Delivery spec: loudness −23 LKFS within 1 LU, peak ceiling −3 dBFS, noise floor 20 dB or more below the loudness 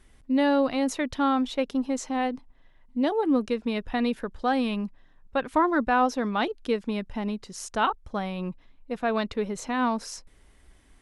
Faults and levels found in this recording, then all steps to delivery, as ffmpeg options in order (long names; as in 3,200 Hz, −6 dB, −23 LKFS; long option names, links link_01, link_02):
integrated loudness −27.0 LKFS; sample peak −12.0 dBFS; target loudness −23.0 LKFS
→ -af "volume=4dB"